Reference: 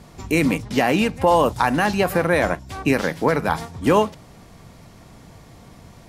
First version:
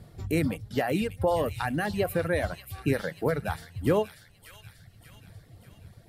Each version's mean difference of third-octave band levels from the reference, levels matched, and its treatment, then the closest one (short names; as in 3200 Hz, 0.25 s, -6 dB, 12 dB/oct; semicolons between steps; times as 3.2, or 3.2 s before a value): 5.0 dB: reverb removal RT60 1.8 s; fifteen-band EQ 100 Hz +9 dB, 250 Hz -5 dB, 1000 Hz -11 dB, 2500 Hz -7 dB, 6300 Hz -11 dB; thin delay 0.588 s, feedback 52%, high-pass 2800 Hz, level -6 dB; gain -4.5 dB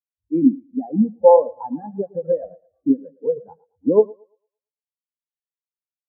21.0 dB: high shelf 2800 Hz -11.5 dB; on a send: thinning echo 0.113 s, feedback 75%, high-pass 180 Hz, level -6 dB; on the sum: spectral expander 4:1; gain +2 dB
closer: first